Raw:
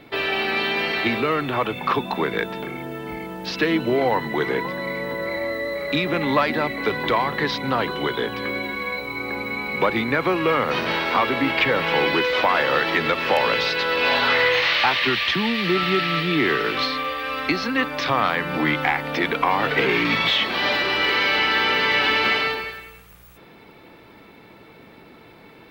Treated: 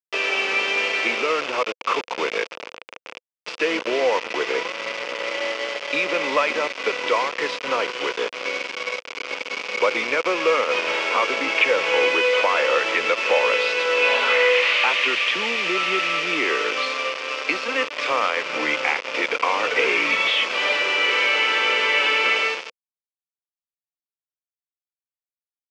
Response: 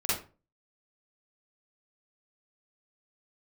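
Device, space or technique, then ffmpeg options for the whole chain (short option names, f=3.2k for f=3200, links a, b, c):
hand-held game console: -af "acrusher=bits=3:mix=0:aa=0.000001,highpass=490,equalizer=f=500:t=q:w=4:g=7,equalizer=f=780:t=q:w=4:g=-6,equalizer=f=1.7k:t=q:w=4:g=-5,equalizer=f=2.5k:t=q:w=4:g=6,equalizer=f=4k:t=q:w=4:g=-8,lowpass=f=5k:w=0.5412,lowpass=f=5k:w=1.3066"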